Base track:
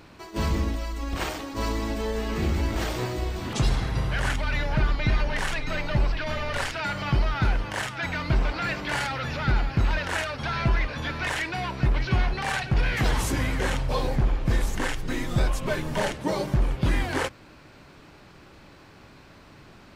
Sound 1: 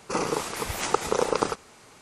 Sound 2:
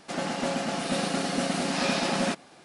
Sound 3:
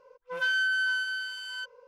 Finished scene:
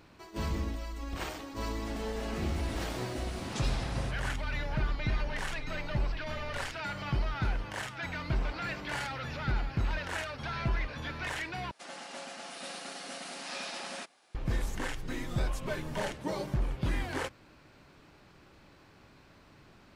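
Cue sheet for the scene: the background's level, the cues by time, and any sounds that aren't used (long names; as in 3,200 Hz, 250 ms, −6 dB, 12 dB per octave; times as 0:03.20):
base track −8 dB
0:01.77: mix in 2 −15 dB
0:11.71: overwrite with 2 −9.5 dB + high-pass filter 970 Hz 6 dB per octave
not used: 1, 3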